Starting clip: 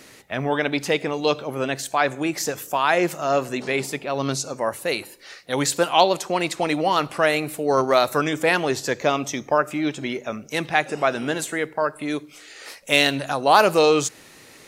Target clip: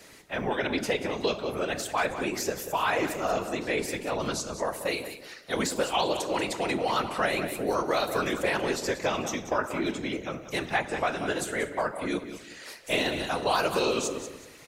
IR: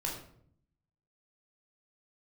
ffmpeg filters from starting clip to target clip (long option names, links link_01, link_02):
-filter_complex "[0:a]asplit=2[link_01][link_02];[1:a]atrim=start_sample=2205[link_03];[link_02][link_03]afir=irnorm=-1:irlink=0,volume=-10.5dB[link_04];[link_01][link_04]amix=inputs=2:normalize=0,afftfilt=real='hypot(re,im)*cos(2*PI*random(0))':imag='hypot(re,im)*sin(2*PI*random(1))':win_size=512:overlap=0.75,aecho=1:1:185|370|555:0.224|0.0627|0.0176,acrossover=split=200|1600[link_05][link_06][link_07];[link_05]acompressor=threshold=-41dB:ratio=4[link_08];[link_06]acompressor=threshold=-25dB:ratio=4[link_09];[link_07]acompressor=threshold=-30dB:ratio=4[link_10];[link_08][link_09][link_10]amix=inputs=3:normalize=0"